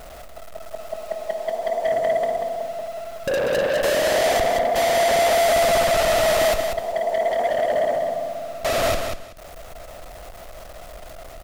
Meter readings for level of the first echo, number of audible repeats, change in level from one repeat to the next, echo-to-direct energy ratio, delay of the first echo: -6.0 dB, 3, -13.5 dB, -6.0 dB, 0.19 s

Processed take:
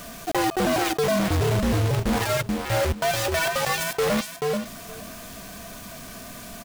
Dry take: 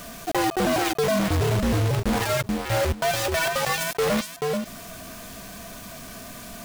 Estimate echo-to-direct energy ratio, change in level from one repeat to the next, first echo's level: -17.5 dB, no steady repeat, -17.5 dB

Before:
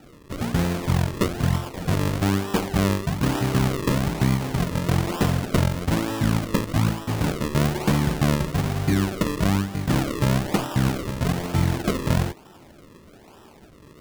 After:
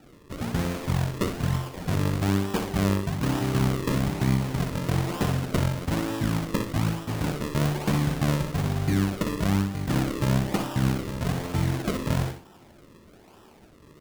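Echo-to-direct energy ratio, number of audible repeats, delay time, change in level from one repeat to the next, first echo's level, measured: -7.5 dB, 2, 61 ms, -11.5 dB, -8.0 dB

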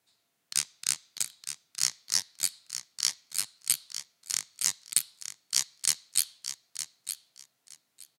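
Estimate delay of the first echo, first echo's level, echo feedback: 0.915 s, -9.5 dB, 18%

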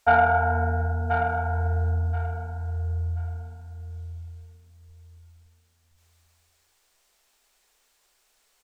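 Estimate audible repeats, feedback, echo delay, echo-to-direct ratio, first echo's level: 3, 24%, 1.031 s, -6.5 dB, -7.0 dB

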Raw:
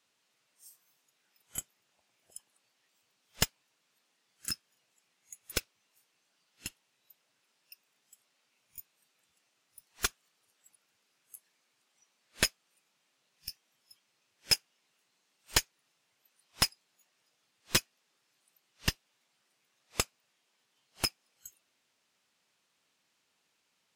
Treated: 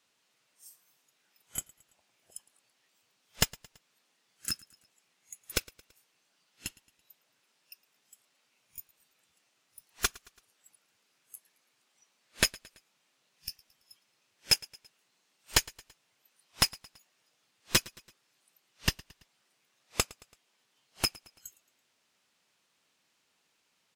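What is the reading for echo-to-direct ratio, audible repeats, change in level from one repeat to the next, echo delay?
-22.0 dB, 2, -6.0 dB, 0.111 s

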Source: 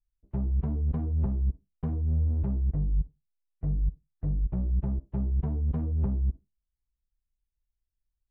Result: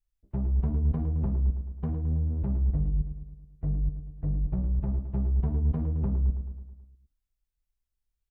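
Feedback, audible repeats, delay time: 59%, 6, 0.108 s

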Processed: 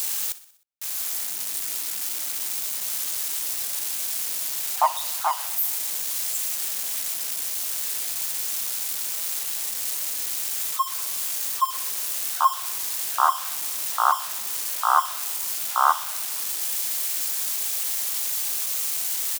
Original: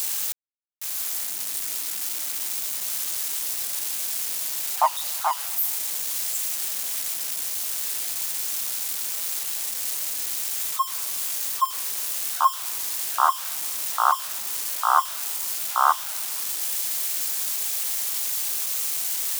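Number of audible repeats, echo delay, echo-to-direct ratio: 4, 62 ms, -16.0 dB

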